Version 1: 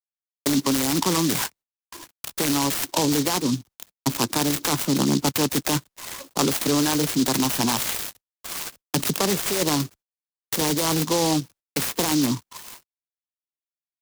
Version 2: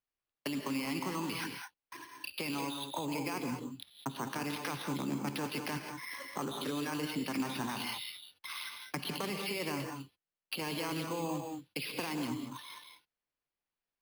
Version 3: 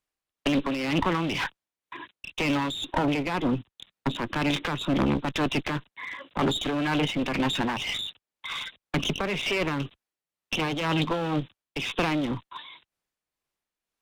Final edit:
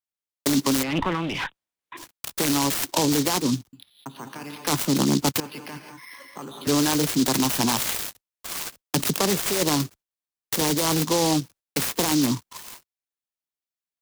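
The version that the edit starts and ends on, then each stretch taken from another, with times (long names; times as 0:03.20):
1
0:00.83–0:01.97: punch in from 3
0:03.73–0:04.67: punch in from 2
0:05.40–0:06.67: punch in from 2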